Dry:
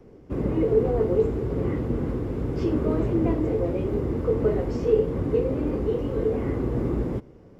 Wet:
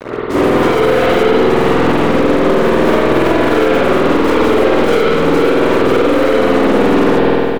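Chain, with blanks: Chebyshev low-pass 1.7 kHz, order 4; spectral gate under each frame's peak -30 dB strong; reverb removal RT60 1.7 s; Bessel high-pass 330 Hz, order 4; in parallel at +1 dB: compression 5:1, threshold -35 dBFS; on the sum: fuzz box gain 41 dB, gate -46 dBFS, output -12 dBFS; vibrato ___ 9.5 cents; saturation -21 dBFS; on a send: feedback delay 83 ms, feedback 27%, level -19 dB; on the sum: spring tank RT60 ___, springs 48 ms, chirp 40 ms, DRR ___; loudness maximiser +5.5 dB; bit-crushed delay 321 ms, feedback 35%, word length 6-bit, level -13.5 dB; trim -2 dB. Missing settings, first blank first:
6.3 Hz, 2.2 s, -10 dB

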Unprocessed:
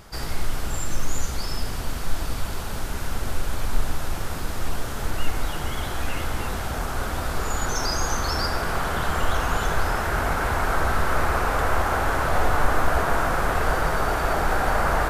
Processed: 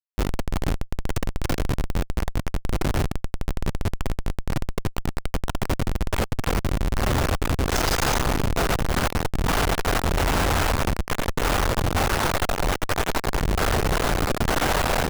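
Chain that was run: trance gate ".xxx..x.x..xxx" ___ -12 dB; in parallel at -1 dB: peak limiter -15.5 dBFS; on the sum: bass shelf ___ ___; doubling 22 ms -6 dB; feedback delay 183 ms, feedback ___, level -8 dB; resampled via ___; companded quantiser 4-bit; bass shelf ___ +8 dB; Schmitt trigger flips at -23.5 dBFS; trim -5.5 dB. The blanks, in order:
84 bpm, 94 Hz, -7 dB, 38%, 22.05 kHz, 190 Hz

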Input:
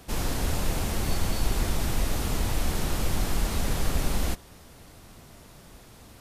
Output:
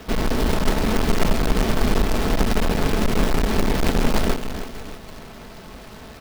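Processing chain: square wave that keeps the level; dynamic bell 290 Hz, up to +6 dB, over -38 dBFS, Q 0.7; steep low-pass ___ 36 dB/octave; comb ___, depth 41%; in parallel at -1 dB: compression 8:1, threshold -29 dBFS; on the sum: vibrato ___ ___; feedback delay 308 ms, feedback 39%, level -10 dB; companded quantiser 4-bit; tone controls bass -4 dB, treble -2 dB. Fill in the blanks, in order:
5.6 kHz, 4.6 ms, 14 Hz, 7.9 cents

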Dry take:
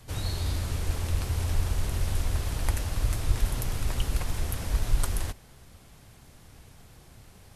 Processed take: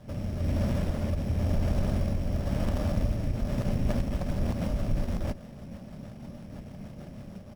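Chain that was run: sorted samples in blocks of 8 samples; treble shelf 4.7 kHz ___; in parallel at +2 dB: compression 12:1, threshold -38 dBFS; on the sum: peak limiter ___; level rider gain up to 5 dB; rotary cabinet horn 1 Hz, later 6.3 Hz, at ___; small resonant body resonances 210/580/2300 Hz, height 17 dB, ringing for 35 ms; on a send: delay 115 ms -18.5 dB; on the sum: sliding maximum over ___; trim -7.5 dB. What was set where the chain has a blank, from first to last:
+4 dB, -16 dBFS, 3.38 s, 17 samples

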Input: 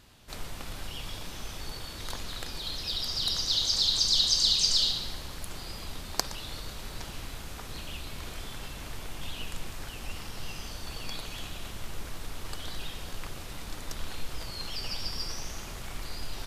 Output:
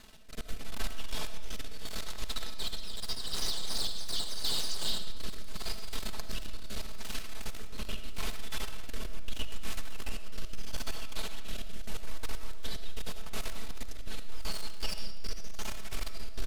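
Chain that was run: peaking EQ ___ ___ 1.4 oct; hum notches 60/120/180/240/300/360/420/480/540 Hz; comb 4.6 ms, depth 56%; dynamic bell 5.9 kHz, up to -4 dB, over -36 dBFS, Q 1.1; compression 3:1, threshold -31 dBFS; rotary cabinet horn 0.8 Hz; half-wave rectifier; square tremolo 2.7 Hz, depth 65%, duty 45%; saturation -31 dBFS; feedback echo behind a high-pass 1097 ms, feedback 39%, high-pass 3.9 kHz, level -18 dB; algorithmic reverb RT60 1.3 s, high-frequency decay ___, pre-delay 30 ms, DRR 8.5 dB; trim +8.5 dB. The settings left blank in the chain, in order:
86 Hz, -6.5 dB, 0.75×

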